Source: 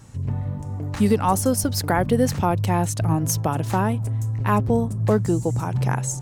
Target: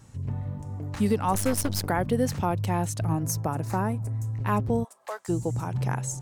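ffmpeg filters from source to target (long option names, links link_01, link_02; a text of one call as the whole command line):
ffmpeg -i in.wav -filter_complex "[0:a]asettb=1/sr,asplit=3[link_01][link_02][link_03];[link_01]atrim=end=1.344[link_04];[link_02]atrim=start=1.34:end=1.87,asetpts=PTS-STARTPTS,afade=type=in:duration=0.004:curve=qsin,afade=type=out:start_time=0.526:duration=0.004:curve=qsin,aeval=exprs='0.355*(cos(1*acos(clip(val(0)/0.355,-1,1)))-cos(1*PI/2))+0.0501*(cos(8*acos(clip(val(0)/0.355,-1,1)))-cos(8*PI/2))':channel_layout=same[link_05];[link_03]atrim=start=1.866[link_06];[link_04][link_05]acrossfade=duration=0.004:curve1=hsin:curve2=qsin[link_07];[link_07][link_06]acrossfade=duration=0.004:curve1=qsin:curve2=hsin,asettb=1/sr,asplit=3[link_08][link_09][link_10];[link_08]atrim=end=3.234[link_11];[link_09]atrim=start=3.23:end=4.24,asetpts=PTS-STARTPTS,afade=type=in:duration=0.004:curve=qsin,afade=type=out:start_time=1.006:duration=0.004:curve=qsin,equalizer=frequency=3200:width_type=o:width=0.43:gain=-14[link_12];[link_10]atrim=start=4.236[link_13];[link_11][link_12]acrossfade=duration=0.004:curve1=hsin:curve2=qsin[link_14];[link_14][link_13]acrossfade=duration=0.004:curve1=qsin:curve2=hsin,asplit=3[link_15][link_16][link_17];[link_15]afade=type=out:start_time=4.83:duration=0.02[link_18];[link_16]highpass=frequency=700:width=0.5412,highpass=frequency=700:width=1.3066,afade=type=in:start_time=4.83:duration=0.02,afade=type=out:start_time=5.28:duration=0.02[link_19];[link_17]afade=type=in:start_time=5.28:duration=0.02[link_20];[link_18][link_19][link_20]amix=inputs=3:normalize=0,volume=-5.5dB" out.wav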